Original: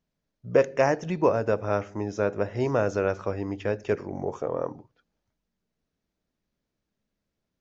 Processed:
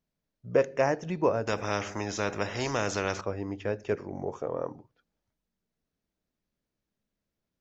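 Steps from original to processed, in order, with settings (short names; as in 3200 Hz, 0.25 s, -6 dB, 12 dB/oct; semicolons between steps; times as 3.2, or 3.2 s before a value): 1.47–3.21 spectral compressor 2:1; gain -3.5 dB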